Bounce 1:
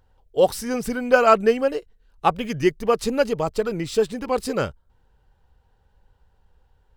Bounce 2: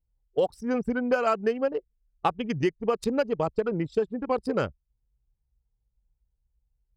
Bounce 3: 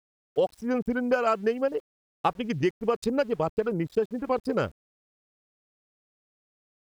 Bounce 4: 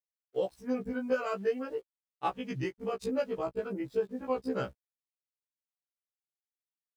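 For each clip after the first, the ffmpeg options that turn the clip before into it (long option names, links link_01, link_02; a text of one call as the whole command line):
ffmpeg -i in.wav -af "anlmdn=158,highpass=53,acompressor=threshold=-21dB:ratio=6" out.wav
ffmpeg -i in.wav -af "aeval=exprs='val(0)*gte(abs(val(0)),0.00316)':channel_layout=same" out.wav
ffmpeg -i in.wav -af "afftfilt=real='re*1.73*eq(mod(b,3),0)':imag='im*1.73*eq(mod(b,3),0)':win_size=2048:overlap=0.75,volume=-4.5dB" out.wav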